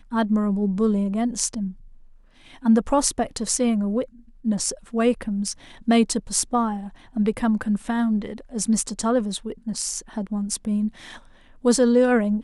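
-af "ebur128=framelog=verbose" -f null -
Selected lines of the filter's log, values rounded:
Integrated loudness:
  I:         -23.2 LUFS
  Threshold: -33.6 LUFS
Loudness range:
  LRA:         2.1 LU
  Threshold: -44.0 LUFS
  LRA low:   -25.3 LUFS
  LRA high:  -23.2 LUFS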